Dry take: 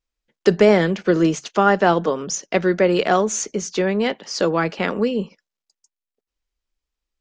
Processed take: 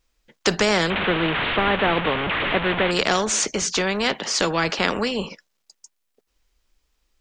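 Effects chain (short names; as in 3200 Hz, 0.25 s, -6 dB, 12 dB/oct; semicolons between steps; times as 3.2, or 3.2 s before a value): 0.9–2.91 delta modulation 16 kbps, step -21 dBFS; spectral compressor 2:1; gain +1 dB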